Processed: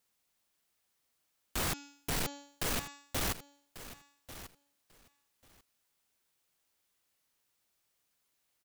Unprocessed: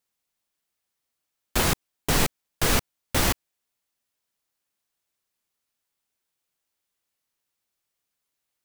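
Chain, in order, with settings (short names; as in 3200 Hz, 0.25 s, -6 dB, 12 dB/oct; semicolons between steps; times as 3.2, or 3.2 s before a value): 1.68–3.26 de-hum 284 Hz, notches 27; compressor, threshold -23 dBFS, peak gain reduction 7 dB; hard clip -34.5 dBFS, distortion -4 dB; feedback echo 1.142 s, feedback 16%, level -14.5 dB; gain +3 dB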